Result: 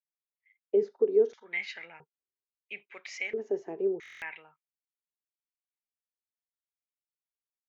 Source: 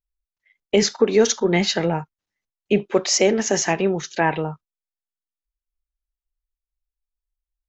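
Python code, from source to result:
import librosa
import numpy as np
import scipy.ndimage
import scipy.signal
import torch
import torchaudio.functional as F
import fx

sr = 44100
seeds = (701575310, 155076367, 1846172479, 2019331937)

y = fx.filter_lfo_bandpass(x, sr, shape='square', hz=0.75, low_hz=410.0, high_hz=2200.0, q=5.9)
y = fx.buffer_glitch(y, sr, at_s=(4.01,), block=1024, repeats=8)
y = F.gain(torch.from_numpy(y), -4.5).numpy()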